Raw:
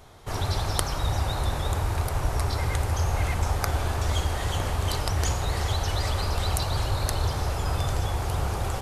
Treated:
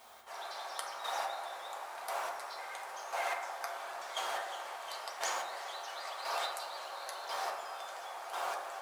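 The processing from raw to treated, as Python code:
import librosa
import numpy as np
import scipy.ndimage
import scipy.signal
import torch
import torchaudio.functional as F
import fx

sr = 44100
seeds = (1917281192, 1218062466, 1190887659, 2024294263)

y = scipy.signal.sosfilt(scipy.signal.butter(4, 620.0, 'highpass', fs=sr, output='sos'), x)
y = fx.high_shelf(y, sr, hz=6400.0, db=-6.5)
y = fx.dmg_noise_colour(y, sr, seeds[0], colour='white', level_db=-61.0)
y = fx.chopper(y, sr, hz=0.96, depth_pct=60, duty_pct=20)
y = fx.rev_fdn(y, sr, rt60_s=0.98, lf_ratio=1.2, hf_ratio=0.35, size_ms=26.0, drr_db=-0.5)
y = y * 10.0 ** (-4.0 / 20.0)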